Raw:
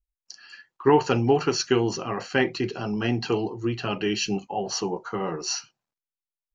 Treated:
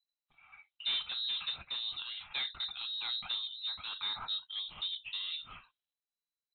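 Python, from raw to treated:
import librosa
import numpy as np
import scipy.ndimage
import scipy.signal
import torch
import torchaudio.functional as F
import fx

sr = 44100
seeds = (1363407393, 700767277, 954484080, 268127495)

y = 10.0 ** (-21.5 / 20.0) * np.tanh(x / 10.0 ** (-21.5 / 20.0))
y = fx.freq_invert(y, sr, carrier_hz=4000)
y = fx.am_noise(y, sr, seeds[0], hz=5.7, depth_pct=50)
y = y * 10.0 ** (-7.0 / 20.0)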